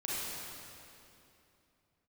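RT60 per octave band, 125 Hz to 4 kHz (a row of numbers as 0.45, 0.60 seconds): 3.2, 3.4, 2.9, 2.7, 2.5, 2.4 seconds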